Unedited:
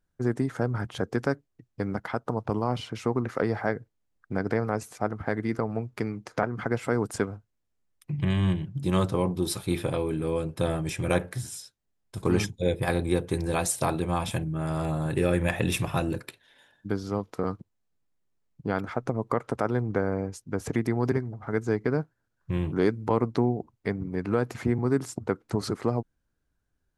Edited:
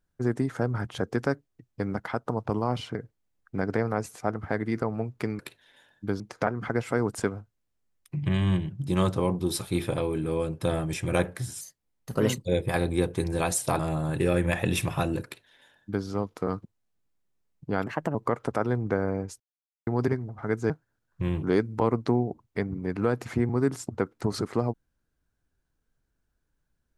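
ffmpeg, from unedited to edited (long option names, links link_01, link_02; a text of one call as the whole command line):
ffmpeg -i in.wav -filter_complex "[0:a]asplit=12[link_01][link_02][link_03][link_04][link_05][link_06][link_07][link_08][link_09][link_10][link_11][link_12];[link_01]atrim=end=2.952[link_13];[link_02]atrim=start=3.718:end=6.162[link_14];[link_03]atrim=start=16.208:end=17.022[link_15];[link_04]atrim=start=6.158:end=11.574[link_16];[link_05]atrim=start=11.57:end=12.59,asetpts=PTS-STARTPTS,asetrate=53361,aresample=44100,atrim=end_sample=37175,asetpts=PTS-STARTPTS[link_17];[link_06]atrim=start=12.586:end=13.932[link_18];[link_07]atrim=start=14.758:end=18.834[link_19];[link_08]atrim=start=18.83:end=19.19,asetpts=PTS-STARTPTS,asetrate=55566,aresample=44100[link_20];[link_09]atrim=start=19.186:end=20.44,asetpts=PTS-STARTPTS,afade=type=out:start_time=1.25:duration=0.004:curve=hsin[link_21];[link_10]atrim=start=20.44:end=20.91,asetpts=PTS-STARTPTS,volume=0[link_22];[link_11]atrim=start=20.91:end=21.742,asetpts=PTS-STARTPTS,afade=type=in:duration=0.004:curve=hsin[link_23];[link_12]atrim=start=21.988[link_24];[link_13][link_14]acrossfade=duration=0.004:curve1=hsin:curve2=hsin[link_25];[link_25][link_15]acrossfade=duration=0.004:curve1=hsin:curve2=hsin[link_26];[link_26][link_16]acrossfade=duration=0.004:curve1=hsin:curve2=hsin[link_27];[link_27][link_17]acrossfade=duration=0.004:curve1=hsin:curve2=hsin[link_28];[link_28][link_18]acrossfade=duration=0.004:curve1=hsin:curve2=hsin[link_29];[link_29][link_19]acrossfade=duration=0.004:curve1=hsin:curve2=hsin[link_30];[link_30][link_20]acrossfade=duration=0.004:curve1=hsin:curve2=hsin[link_31];[link_21][link_22][link_23]concat=n=3:v=0:a=1[link_32];[link_31][link_32]acrossfade=duration=0.004:curve1=hsin:curve2=hsin[link_33];[link_33][link_24]acrossfade=duration=0.004:curve1=hsin:curve2=hsin" out.wav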